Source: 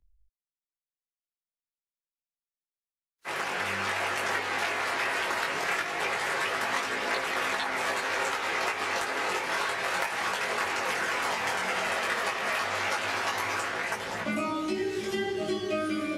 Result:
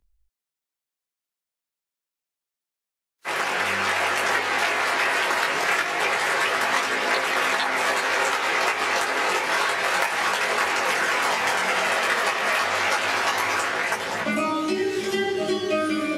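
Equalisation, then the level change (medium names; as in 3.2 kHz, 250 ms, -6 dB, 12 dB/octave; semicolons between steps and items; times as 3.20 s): bass shelf 130 Hz -9.5 dB; +7.0 dB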